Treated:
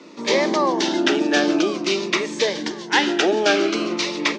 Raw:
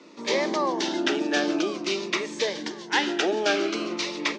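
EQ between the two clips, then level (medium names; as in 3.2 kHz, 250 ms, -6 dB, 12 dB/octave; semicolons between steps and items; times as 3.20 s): bass shelf 170 Hz +4.5 dB; +5.5 dB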